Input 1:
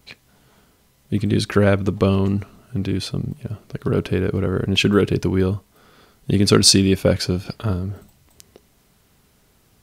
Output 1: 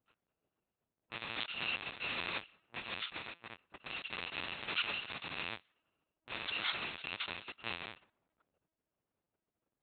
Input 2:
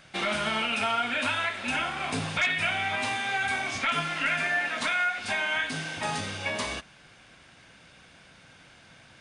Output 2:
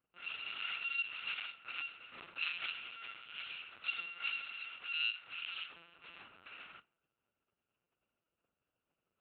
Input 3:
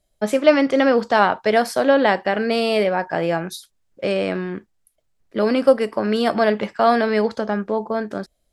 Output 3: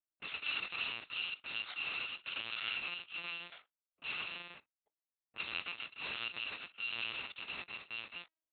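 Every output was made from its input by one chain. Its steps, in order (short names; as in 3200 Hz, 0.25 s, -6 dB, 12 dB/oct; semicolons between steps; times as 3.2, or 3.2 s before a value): FFT order left unsorted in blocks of 128 samples; bell 61 Hz +4 dB 0.33 oct; limiter -12 dBFS; low-pass opened by the level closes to 490 Hz, open at -18 dBFS; LPC vocoder at 8 kHz pitch kept; differentiator; gain +5.5 dB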